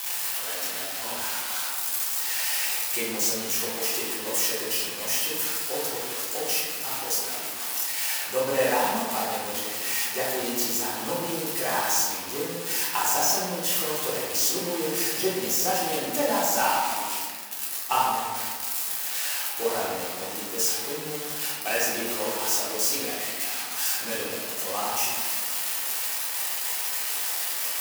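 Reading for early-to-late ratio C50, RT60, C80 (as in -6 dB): -0.5 dB, 1.6 s, 1.5 dB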